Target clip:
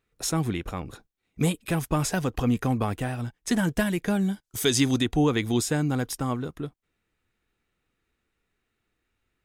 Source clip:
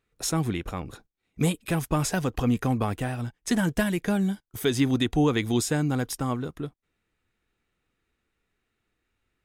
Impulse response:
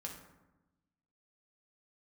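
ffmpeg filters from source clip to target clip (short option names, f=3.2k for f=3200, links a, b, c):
-filter_complex "[0:a]asplit=3[a][b][c];[a]afade=t=out:st=4.43:d=0.02[d];[b]equalizer=f=6.7k:w=0.58:g=11,afade=t=in:st=4.43:d=0.02,afade=t=out:st=5:d=0.02[e];[c]afade=t=in:st=5:d=0.02[f];[d][e][f]amix=inputs=3:normalize=0"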